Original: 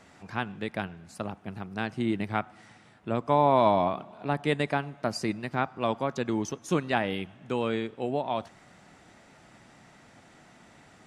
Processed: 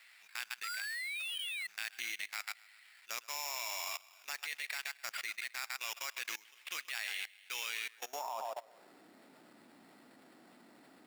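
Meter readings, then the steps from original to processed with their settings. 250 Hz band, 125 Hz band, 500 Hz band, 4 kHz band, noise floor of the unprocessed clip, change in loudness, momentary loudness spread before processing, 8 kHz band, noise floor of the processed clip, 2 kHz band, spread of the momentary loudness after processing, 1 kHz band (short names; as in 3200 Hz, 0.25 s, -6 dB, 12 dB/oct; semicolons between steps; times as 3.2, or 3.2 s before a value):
-33.5 dB, under -40 dB, -23.5 dB, +0.5 dB, -56 dBFS, -10.5 dB, 14 LU, +4.0 dB, -62 dBFS, -2.5 dB, 7 LU, -16.5 dB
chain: thinning echo 0.129 s, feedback 43%, high-pass 480 Hz, level -9 dB; painted sound rise, 0.63–1.67, 1300–4300 Hz -29 dBFS; sample-rate reducer 6200 Hz, jitter 0%; high-pass sweep 2200 Hz -> 270 Hz, 7.83–9.04; level quantiser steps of 21 dB; gain +2 dB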